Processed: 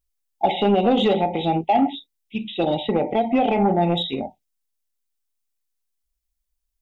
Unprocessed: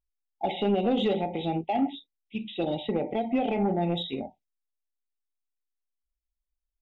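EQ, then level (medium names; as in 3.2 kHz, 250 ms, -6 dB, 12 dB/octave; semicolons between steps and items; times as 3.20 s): treble shelf 3.6 kHz +9.5 dB; dynamic bell 1 kHz, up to +8 dB, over -43 dBFS, Q 0.83; bass shelf 340 Hz +4.5 dB; +2.5 dB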